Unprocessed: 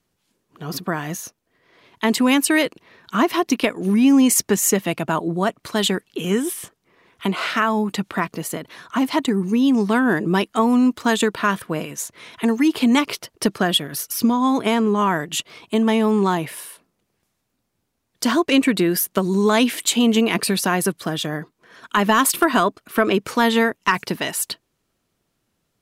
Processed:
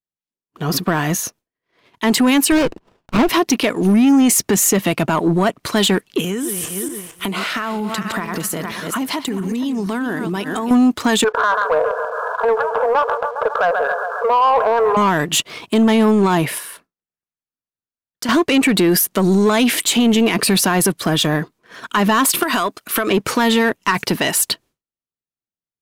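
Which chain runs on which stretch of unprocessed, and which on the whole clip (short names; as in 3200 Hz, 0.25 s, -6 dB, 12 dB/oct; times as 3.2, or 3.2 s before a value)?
2.52–3.29 high shelf 5000 Hz -11.5 dB + expander -49 dBFS + running maximum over 17 samples
6.2–10.71 regenerating reverse delay 0.229 s, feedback 44%, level -10 dB + high shelf 6800 Hz +6.5 dB + compressor 12:1, threshold -28 dBFS
11.24–14.97 brick-wall FIR band-pass 430–1700 Hz + feedback echo 0.136 s, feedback 54%, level -18 dB + fast leveller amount 50%
16.58–18.29 bell 1500 Hz +6.5 dB 1 oct + compressor 2:1, threshold -42 dBFS
22.43–23.11 tilt +2 dB/oct + compressor 12:1, threshold -22 dBFS
whole clip: expander -46 dBFS; limiter -14 dBFS; sample leveller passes 1; gain +6 dB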